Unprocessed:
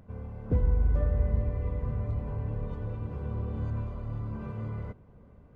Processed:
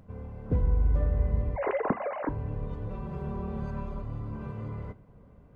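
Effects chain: 1.56–2.29 sine-wave speech; 2.9–4.02 comb 5.2 ms, depth 95%; two-slope reverb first 0.26 s, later 2.3 s, from -28 dB, DRR 11.5 dB

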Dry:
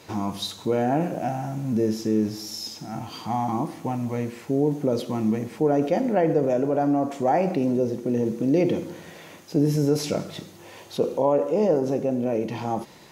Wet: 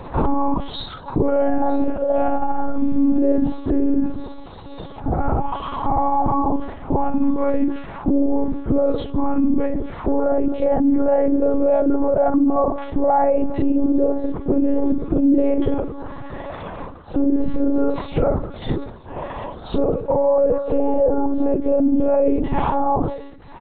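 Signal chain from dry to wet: reverb removal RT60 0.88 s; gate with hold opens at -44 dBFS; resonant high shelf 1600 Hz -11 dB, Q 1.5; compressor 4:1, threshold -28 dBFS, peak gain reduction 10.5 dB; granular stretch 1.8×, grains 0.135 s; echo 0.95 s -22.5 dB; monotone LPC vocoder at 8 kHz 280 Hz; maximiser +26.5 dB; sustainer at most 87 dB/s; gain -8.5 dB

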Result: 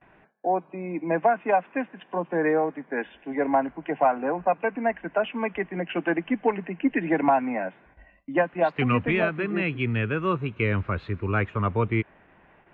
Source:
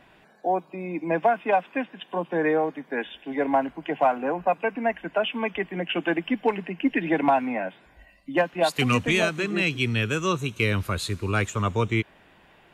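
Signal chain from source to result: gate with hold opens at -46 dBFS; LPF 2300 Hz 24 dB/oct

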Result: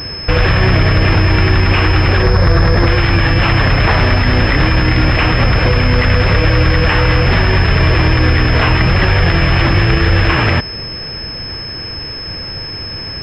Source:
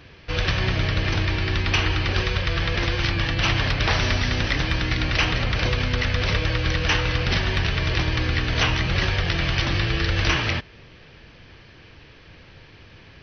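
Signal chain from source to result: 2.22–2.87 median filter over 15 samples; maximiser +20 dB; pulse-width modulation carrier 5200 Hz; gain -1 dB

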